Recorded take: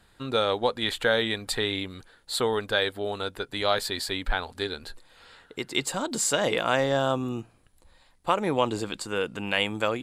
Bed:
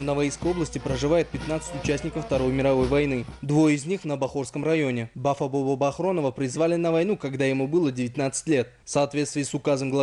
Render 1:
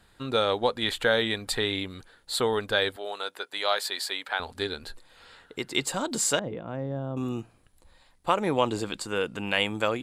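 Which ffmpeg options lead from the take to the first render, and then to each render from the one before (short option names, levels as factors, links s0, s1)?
-filter_complex "[0:a]asettb=1/sr,asplit=3[s0][s1][s2];[s0]atrim=end=2.964[s3];[s1]atrim=start=2.96:end=4.4,asetpts=PTS-STARTPTS,afade=t=in:d=0.004:c=qsin,afade=t=out:st=1.436:d=0.004:c=qsin,highpass=580[s4];[s2]atrim=start=4.396[s5];[s3][s4]acrossfade=d=0.004:c1=hsin:c2=qsin[s6];[s6][s5]acrossfade=d=0.004:c1=qsin:c2=hsin,asettb=1/sr,asplit=3[s7][s8][s9];[s7]atrim=end=6.394[s10];[s8]atrim=start=6.39:end=7.17,asetpts=PTS-STARTPTS,afade=t=in:d=0.004:c=qsin,afade=t=out:st=0.776:d=0.004:c=qsin,bandpass=f=120:t=q:w=0.75[s11];[s9]atrim=start=7.166[s12];[s10][s11]acrossfade=d=0.004:c1=hsin:c2=qsin[s13];[s13][s12]acrossfade=d=0.004:c1=qsin:c2=hsin"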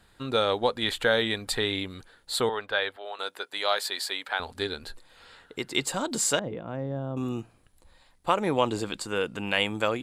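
-filter_complex "[0:a]asettb=1/sr,asplit=3[s0][s1][s2];[s0]atrim=end=2.494[s3];[s1]atrim=start=2.49:end=3.19,asetpts=PTS-STARTPTS,afade=t=in:d=0.004:c=qsin,afade=t=out:st=0.696:d=0.004:c=qsin,acrossover=split=510 3700:gain=0.224 1 0.158[s4][s5][s6];[s4][s5][s6]amix=inputs=3:normalize=0[s7];[s2]atrim=start=3.186[s8];[s3][s7]acrossfade=d=0.004:c1=hsin:c2=qsin[s9];[s9][s8]acrossfade=d=0.004:c1=qsin:c2=hsin"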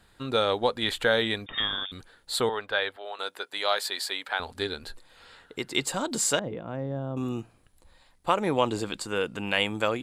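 -filter_complex "[0:a]asettb=1/sr,asplit=3[s0][s1][s2];[s0]atrim=end=1.464[s3];[s1]atrim=start=1.46:end=1.92,asetpts=PTS-STARTPTS,afade=t=in:d=0.004:c=qsin,afade=t=out:st=0.456:d=0.004:c=qsin,lowpass=f=3100:t=q:w=0.5098,lowpass=f=3100:t=q:w=0.6013,lowpass=f=3100:t=q:w=0.9,lowpass=f=3100:t=q:w=2.563,afreqshift=-3700[s4];[s2]atrim=start=1.916[s5];[s3][s4]acrossfade=d=0.004:c1=hsin:c2=qsin[s6];[s6][s5]acrossfade=d=0.004:c1=qsin:c2=hsin"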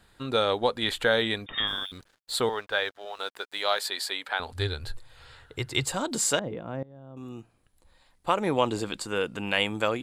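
-filter_complex "[0:a]asplit=3[s0][s1][s2];[s0]afade=t=out:st=1.66:d=0.02[s3];[s1]aeval=exprs='sgn(val(0))*max(abs(val(0))-0.00211,0)':c=same,afade=t=in:st=1.66:d=0.02,afade=t=out:st=3.79:d=0.02[s4];[s2]afade=t=in:st=3.79:d=0.02[s5];[s3][s4][s5]amix=inputs=3:normalize=0,asettb=1/sr,asplit=3[s6][s7][s8];[s6]atrim=end=4.524[s9];[s7]atrim=start=4.52:end=5.94,asetpts=PTS-STARTPTS,afade=t=in:d=0.004:c=qsin,afade=t=out:st=1.416:d=0.004:c=qsin,lowshelf=f=150:t=q:w=3:g=9[s10];[s8]atrim=start=5.936[s11];[s9][s10]acrossfade=d=0.004:c1=hsin:c2=qsin[s12];[s12][s11]acrossfade=d=0.004:c1=qsin:c2=hsin,asplit=2[s13][s14];[s13]atrim=end=6.83,asetpts=PTS-STARTPTS,afade=t=out:st=6.826:d=0.004:c=hsin:silence=0.0891251[s15];[s14]atrim=start=6.83,asetpts=PTS-STARTPTS,afade=t=in:d=1.64:silence=0.0891251[s16];[s15][s16]concat=n=2:v=0:a=1"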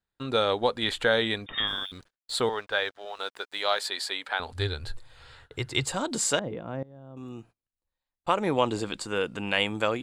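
-af "agate=range=0.0398:threshold=0.00251:ratio=16:detection=peak,equalizer=f=13000:t=o:w=0.39:g=-11.5"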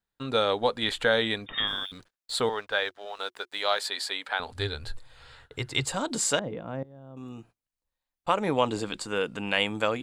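-af "equalizer=f=90:w=5.5:g=-8,bandreject=f=360:w=12"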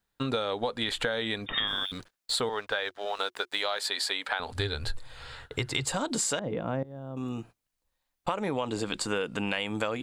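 -filter_complex "[0:a]asplit=2[s0][s1];[s1]alimiter=limit=0.119:level=0:latency=1,volume=1.19[s2];[s0][s2]amix=inputs=2:normalize=0,acompressor=threshold=0.0501:ratio=10"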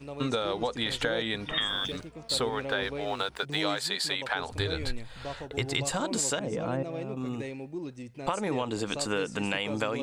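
-filter_complex "[1:a]volume=0.178[s0];[0:a][s0]amix=inputs=2:normalize=0"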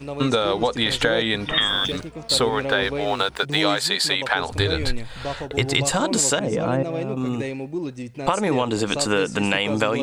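-af "volume=2.82"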